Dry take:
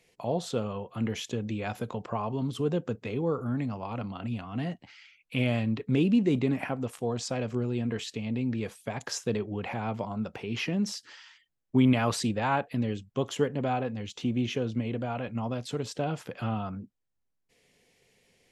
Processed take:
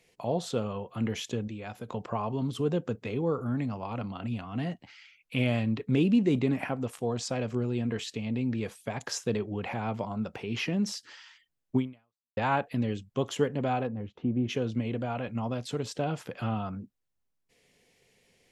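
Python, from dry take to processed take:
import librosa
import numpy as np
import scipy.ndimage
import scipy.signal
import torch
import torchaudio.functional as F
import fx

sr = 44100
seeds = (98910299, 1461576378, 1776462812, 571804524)

y = fx.lowpass(x, sr, hz=1100.0, slope=12, at=(13.86, 14.48), fade=0.02)
y = fx.edit(y, sr, fx.clip_gain(start_s=1.48, length_s=0.41, db=-6.5),
    fx.fade_out_span(start_s=11.76, length_s=0.61, curve='exp'), tone=tone)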